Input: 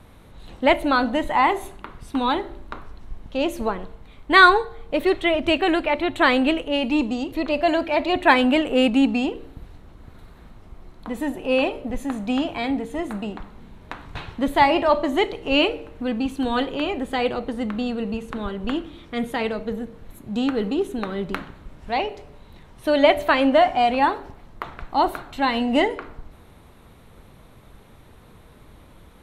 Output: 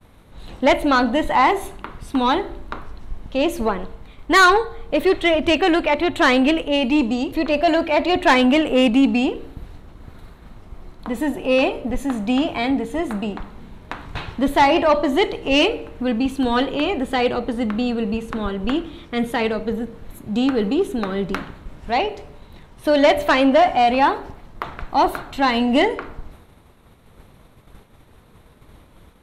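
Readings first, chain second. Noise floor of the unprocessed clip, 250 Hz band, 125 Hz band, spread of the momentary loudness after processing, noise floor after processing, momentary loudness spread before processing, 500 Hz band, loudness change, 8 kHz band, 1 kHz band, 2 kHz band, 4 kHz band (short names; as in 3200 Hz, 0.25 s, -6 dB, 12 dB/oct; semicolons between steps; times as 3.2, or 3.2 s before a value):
-49 dBFS, +3.5 dB, +4.0 dB, 16 LU, -50 dBFS, 16 LU, +3.0 dB, +2.5 dB, n/a, +2.0 dB, +1.0 dB, +2.5 dB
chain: expander -42 dBFS; soft clip -12 dBFS, distortion -14 dB; gain +4.5 dB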